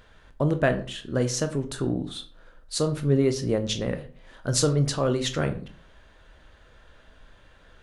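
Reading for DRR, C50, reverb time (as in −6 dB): 7.5 dB, 13.5 dB, 0.40 s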